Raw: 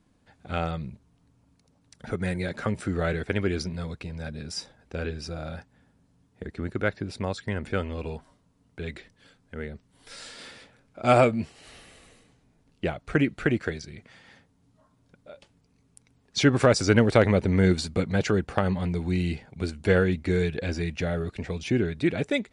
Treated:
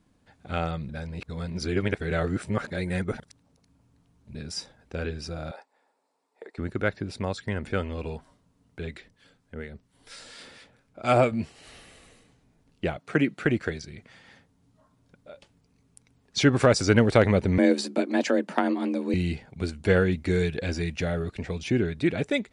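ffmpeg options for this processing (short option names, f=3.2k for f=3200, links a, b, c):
-filter_complex "[0:a]asettb=1/sr,asplit=3[a][b][c];[a]atrim=end=5.514[d];[b]atrim=start=5.51:end=6.58,asetpts=PTS-STARTPTS,afade=t=in:d=0.004:c=qsin,afade=t=out:st=1.066:d=0.004:c=qsin,highpass=f=430:w=0.5412,highpass=f=430:w=1.3066,equalizer=f=890:t=q:w=4:g=6,equalizer=f=1.6k:t=q:w=4:g=-6,equalizer=f=3.1k:t=q:w=4:g=-9,equalizer=f=6.2k:t=q:w=4:g=-8,lowpass=f=9k:w=0.5412,lowpass=f=9k:w=1.3066[e];[c]atrim=start=6.576[f];[d][e]acrossfade=d=0.004:c1=hsin:c2=qsin[g];[g][f]acrossfade=d=0.004:c1=qsin:c2=hsin,asettb=1/sr,asplit=3[h][i][j];[h]atrim=end=8.864[k];[i]atrim=start=8.86:end=11.32,asetpts=PTS-STARTPTS,afade=t=in:d=0.004:c=qsin,afade=t=out:st=2.456:d=0.004:c=qsin,acrossover=split=900[l][m];[l]aeval=exprs='val(0)*(1-0.5/2+0.5/2*cos(2*PI*4.3*n/s))':c=same[n];[m]aeval=exprs='val(0)*(1-0.5/2-0.5/2*cos(2*PI*4.3*n/s))':c=same[o];[n][o]amix=inputs=2:normalize=0[p];[j]atrim=start=11.316[q];[k][p]acrossfade=d=0.004:c1=hsin:c2=qsin[r];[r][q]acrossfade=d=0.004:c1=qsin:c2=hsin,asettb=1/sr,asplit=3[s][t][u];[s]atrim=end=12.974[v];[t]atrim=start=12.97:end=13.45,asetpts=PTS-STARTPTS,afade=t=in:d=0.004:c=qsin,afade=t=out:st=0.476:d=0.004:c=qsin,highpass=f=140:w=0.5412,highpass=f=140:w=1.3066[w];[u]atrim=start=13.446[x];[v][w]acrossfade=d=0.004:c1=hsin:c2=qsin[y];[y][x]acrossfade=d=0.004:c1=qsin:c2=hsin,asettb=1/sr,asplit=3[z][aa][ab];[z]atrim=end=17.584[ac];[aa]atrim=start=17.58:end=19.14,asetpts=PTS-STARTPTS,afade=t=in:d=0.004:c=qsin,afade=t=out:st=1.556:d=0.004:c=qsin,afreqshift=130[ad];[ab]atrim=start=19.136[ae];[ac][ad]acrossfade=d=0.004:c1=hsin:c2=qsin[af];[af][ae]acrossfade=d=0.004:c1=qsin:c2=hsin,asettb=1/sr,asplit=3[ag][ah][ai];[ag]atrim=end=20.164[aj];[ah]atrim=start=20.16:end=21.12,asetpts=PTS-STARTPTS,afade=t=in:d=0.004:c=qsin,afade=t=out:st=0.956:d=0.004:c=qsin,highshelf=f=4.7k:g=4[ak];[ai]atrim=start=21.116[al];[aj][ak]acrossfade=d=0.004:c1=hsin:c2=qsin[am];[am][al]acrossfade=d=0.004:c1=qsin:c2=hsin,asplit=3[an][ao][ap];[an]atrim=end=0.892[aq];[ao]atrim=start=0.888:end=4.352,asetpts=PTS-STARTPTS,areverse[ar];[ap]atrim=start=4.348[as];[aq][ar]acrossfade=d=0.004:c1=hsin:c2=hsin[at];[at][as]acrossfade=d=0.004:c1=hsin:c2=hsin"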